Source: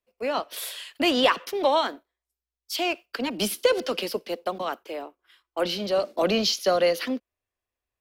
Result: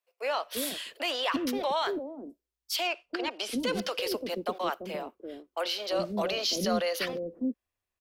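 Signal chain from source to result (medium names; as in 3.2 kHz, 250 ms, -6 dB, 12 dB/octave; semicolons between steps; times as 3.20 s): peak limiter -19 dBFS, peak gain reduction 10 dB; 2.87–3.60 s: distance through air 67 m; bands offset in time highs, lows 340 ms, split 450 Hz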